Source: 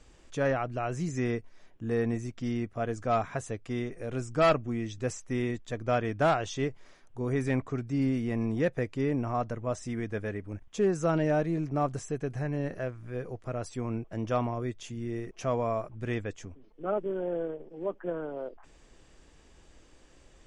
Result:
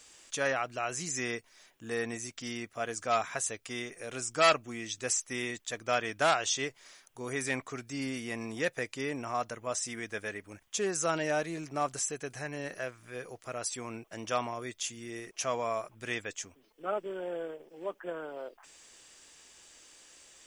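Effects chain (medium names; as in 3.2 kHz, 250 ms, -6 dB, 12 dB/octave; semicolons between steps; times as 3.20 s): tilt EQ +4.5 dB/octave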